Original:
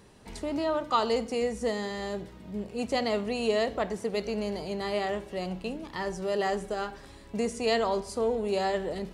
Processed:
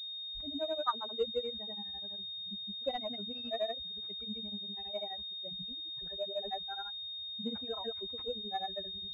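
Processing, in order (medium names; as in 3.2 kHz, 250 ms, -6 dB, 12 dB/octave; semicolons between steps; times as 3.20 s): expander on every frequency bin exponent 3; in parallel at -11 dB: saturation -29 dBFS, distortion -12 dB; on the sum: granulator 100 ms, grains 12 per s, pitch spread up and down by 0 st; class-D stage that switches slowly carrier 3.7 kHz; trim -2 dB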